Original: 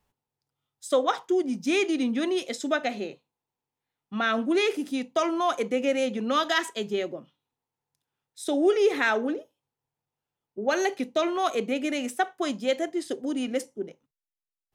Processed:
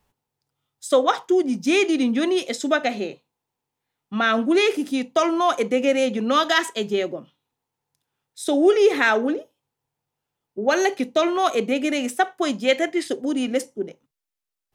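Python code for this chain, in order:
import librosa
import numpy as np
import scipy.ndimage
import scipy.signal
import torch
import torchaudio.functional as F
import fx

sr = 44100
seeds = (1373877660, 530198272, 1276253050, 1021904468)

y = fx.peak_eq(x, sr, hz=2200.0, db=fx.line((12.63, 5.0), (13.07, 12.5)), octaves=1.1, at=(12.63, 13.07), fade=0.02)
y = F.gain(torch.from_numpy(y), 5.5).numpy()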